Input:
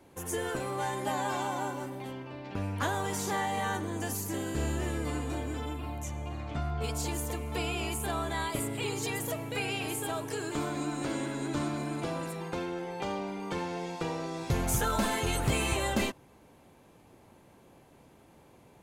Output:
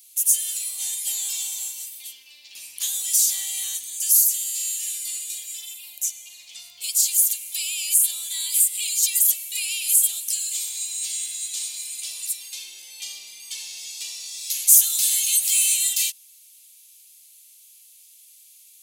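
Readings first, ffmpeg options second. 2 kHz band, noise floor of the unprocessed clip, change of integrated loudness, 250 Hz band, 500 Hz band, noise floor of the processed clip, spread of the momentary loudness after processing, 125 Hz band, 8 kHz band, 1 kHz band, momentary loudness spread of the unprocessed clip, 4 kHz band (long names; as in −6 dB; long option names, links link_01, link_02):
−1.5 dB, −59 dBFS, +13.0 dB, below −35 dB, below −30 dB, −51 dBFS, 18 LU, below −40 dB, +20.5 dB, below −25 dB, 8 LU, +11.5 dB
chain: -af "aexciter=amount=8.5:drive=9.9:freq=2300,aderivative,volume=-8.5dB"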